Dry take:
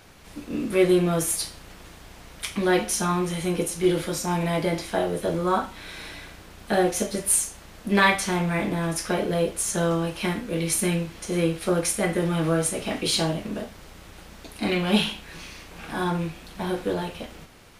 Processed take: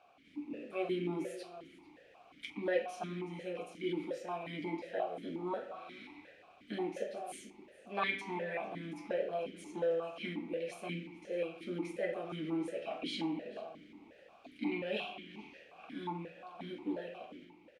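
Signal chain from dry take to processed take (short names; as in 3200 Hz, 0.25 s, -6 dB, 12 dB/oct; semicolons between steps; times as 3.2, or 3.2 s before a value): outdoor echo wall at 76 m, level -14 dB; spring tank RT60 1.2 s, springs 40 ms, chirp 65 ms, DRR 9.5 dB; vowel sequencer 5.6 Hz; gain -2 dB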